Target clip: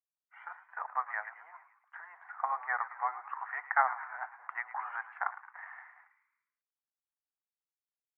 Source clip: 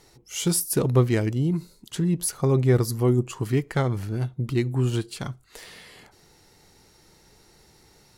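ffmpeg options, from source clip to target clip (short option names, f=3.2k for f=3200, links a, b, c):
-filter_complex "[0:a]aeval=exprs='sgn(val(0))*max(abs(val(0))-0.00299,0)':c=same,dynaudnorm=f=570:g=7:m=10dB,agate=range=-33dB:threshold=-40dB:ratio=3:detection=peak,asuperpass=centerf=1200:order=12:qfactor=1,asplit=6[a][b][c][d][e][f];[b]adelay=109,afreqshift=57,volume=-15dB[g];[c]adelay=218,afreqshift=114,volume=-20.4dB[h];[d]adelay=327,afreqshift=171,volume=-25.7dB[i];[e]adelay=436,afreqshift=228,volume=-31.1dB[j];[f]adelay=545,afreqshift=285,volume=-36.4dB[k];[a][g][h][i][j][k]amix=inputs=6:normalize=0"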